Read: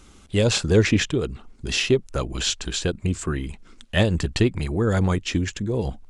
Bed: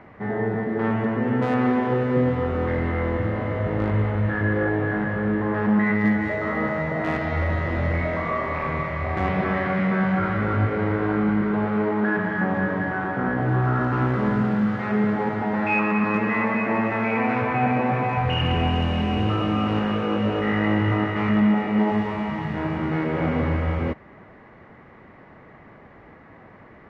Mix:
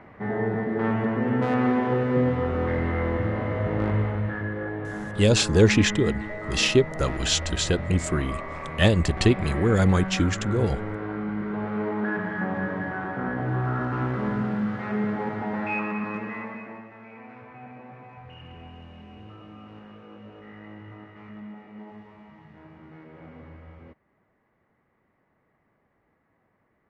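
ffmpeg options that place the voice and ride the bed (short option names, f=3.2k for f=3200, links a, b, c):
-filter_complex "[0:a]adelay=4850,volume=0.5dB[a];[1:a]volume=2.5dB,afade=t=out:st=3.91:d=0.61:silence=0.421697,afade=t=in:st=11.28:d=0.61:silence=0.630957,afade=t=out:st=15.52:d=1.35:silence=0.133352[b];[a][b]amix=inputs=2:normalize=0"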